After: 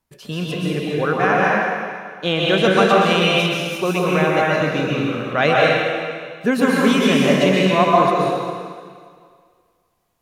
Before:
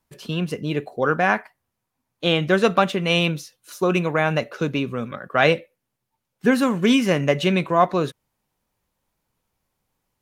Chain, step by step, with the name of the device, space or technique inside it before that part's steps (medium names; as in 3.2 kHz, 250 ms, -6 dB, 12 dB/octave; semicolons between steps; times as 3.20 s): stairwell (reverberation RT60 1.9 s, pre-delay 117 ms, DRR -4.5 dB); trim -1 dB